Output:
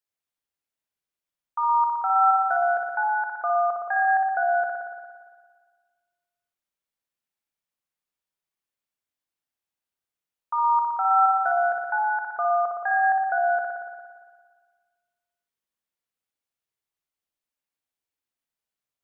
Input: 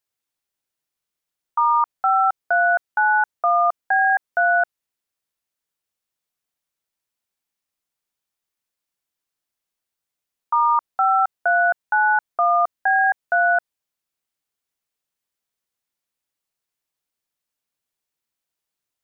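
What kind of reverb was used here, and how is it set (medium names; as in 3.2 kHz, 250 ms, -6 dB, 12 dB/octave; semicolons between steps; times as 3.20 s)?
spring tank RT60 1.6 s, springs 57 ms, chirp 55 ms, DRR 0 dB; trim -7.5 dB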